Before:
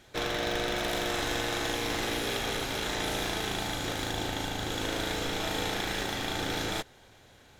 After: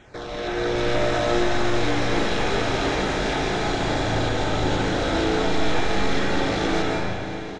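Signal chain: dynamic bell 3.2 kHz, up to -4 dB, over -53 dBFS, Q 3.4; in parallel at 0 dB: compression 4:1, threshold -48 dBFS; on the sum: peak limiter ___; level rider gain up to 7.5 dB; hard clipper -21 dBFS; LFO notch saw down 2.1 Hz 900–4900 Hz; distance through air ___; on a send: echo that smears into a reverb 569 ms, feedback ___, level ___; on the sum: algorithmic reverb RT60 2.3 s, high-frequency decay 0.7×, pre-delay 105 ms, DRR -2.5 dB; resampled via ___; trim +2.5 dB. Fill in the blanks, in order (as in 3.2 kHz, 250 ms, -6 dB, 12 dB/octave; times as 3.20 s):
-26 dBFS, 110 m, 46%, -15 dB, 22.05 kHz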